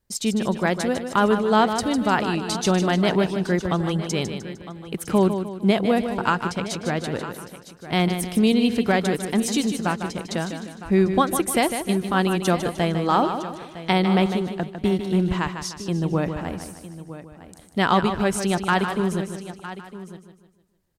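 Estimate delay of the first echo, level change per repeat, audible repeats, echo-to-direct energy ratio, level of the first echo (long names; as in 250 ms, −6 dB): 152 ms, repeats not evenly spaced, 7, −6.5 dB, −8.5 dB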